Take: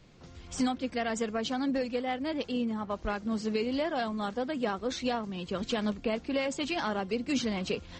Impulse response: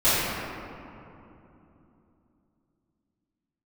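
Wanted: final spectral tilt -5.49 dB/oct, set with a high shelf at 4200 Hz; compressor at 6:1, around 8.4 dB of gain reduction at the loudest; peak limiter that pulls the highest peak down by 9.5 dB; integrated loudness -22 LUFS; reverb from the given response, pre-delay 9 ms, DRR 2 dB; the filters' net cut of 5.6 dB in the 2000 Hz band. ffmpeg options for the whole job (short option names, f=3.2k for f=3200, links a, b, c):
-filter_complex "[0:a]equalizer=f=2k:t=o:g=-6.5,highshelf=f=4.2k:g=-4,acompressor=threshold=-35dB:ratio=6,alimiter=level_in=10dB:limit=-24dB:level=0:latency=1,volume=-10dB,asplit=2[a][b];[1:a]atrim=start_sample=2205,adelay=9[c];[b][c]afir=irnorm=-1:irlink=0,volume=-21.5dB[d];[a][d]amix=inputs=2:normalize=0,volume=17.5dB"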